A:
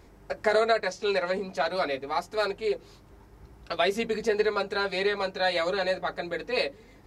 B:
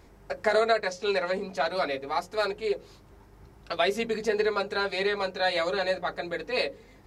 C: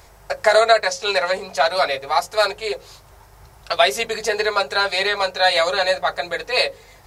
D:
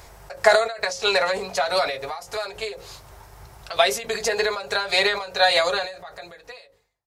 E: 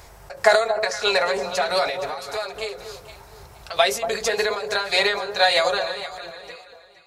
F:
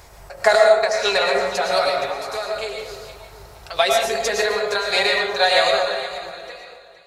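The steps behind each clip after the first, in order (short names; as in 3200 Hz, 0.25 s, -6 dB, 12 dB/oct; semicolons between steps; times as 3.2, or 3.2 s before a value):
notches 60/120/180/240/300/360/420/480/540 Hz
EQ curve 130 Hz 0 dB, 250 Hz -14 dB, 640 Hz +5 dB, 2200 Hz +4 dB, 9200 Hz +11 dB; gain +5.5 dB
ending faded out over 1.90 s; ending taper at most 100 dB/s; gain +2 dB
echo with dull and thin repeats by turns 0.234 s, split 1100 Hz, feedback 52%, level -7.5 dB
digital reverb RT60 0.59 s, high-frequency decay 0.65×, pre-delay 75 ms, DRR 1.5 dB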